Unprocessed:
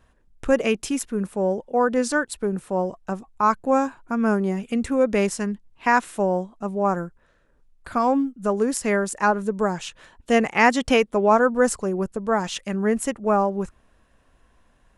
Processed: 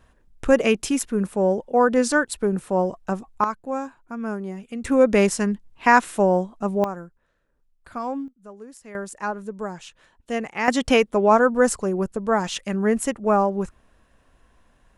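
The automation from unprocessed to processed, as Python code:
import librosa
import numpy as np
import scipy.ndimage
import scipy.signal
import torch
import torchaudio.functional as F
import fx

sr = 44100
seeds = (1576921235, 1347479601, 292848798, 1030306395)

y = fx.gain(x, sr, db=fx.steps((0.0, 2.5), (3.44, -8.0), (4.85, 3.5), (6.84, -8.5), (8.28, -19.5), (8.95, -8.0), (10.68, 1.0)))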